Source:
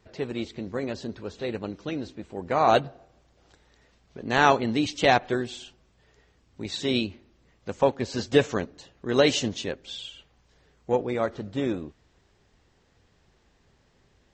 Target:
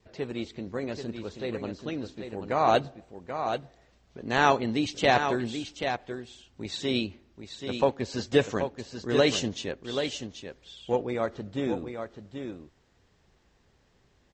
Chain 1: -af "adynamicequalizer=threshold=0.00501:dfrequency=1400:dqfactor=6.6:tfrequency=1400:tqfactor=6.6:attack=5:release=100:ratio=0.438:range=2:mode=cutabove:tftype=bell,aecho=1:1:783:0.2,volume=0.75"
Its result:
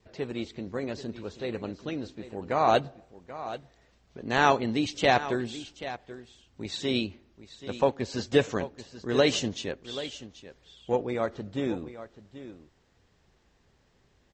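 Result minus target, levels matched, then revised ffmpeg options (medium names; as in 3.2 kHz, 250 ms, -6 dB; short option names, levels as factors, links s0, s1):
echo-to-direct -6.5 dB
-af "adynamicequalizer=threshold=0.00501:dfrequency=1400:dqfactor=6.6:tfrequency=1400:tqfactor=6.6:attack=5:release=100:ratio=0.438:range=2:mode=cutabove:tftype=bell,aecho=1:1:783:0.422,volume=0.75"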